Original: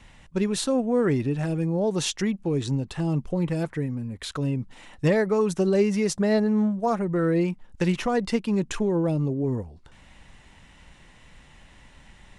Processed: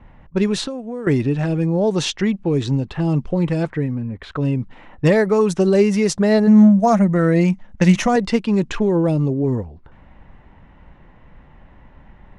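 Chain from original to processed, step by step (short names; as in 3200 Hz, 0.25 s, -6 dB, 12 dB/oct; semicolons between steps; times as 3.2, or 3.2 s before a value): 6.47–8.16 thirty-one-band EQ 200 Hz +9 dB, 400 Hz -8 dB, 630 Hz +7 dB, 2000 Hz +5 dB, 6300 Hz +9 dB; low-pass opened by the level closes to 1100 Hz, open at -18 dBFS; 0.65–1.07 compressor 8:1, threshold -32 dBFS, peak gain reduction 14 dB; gain +6.5 dB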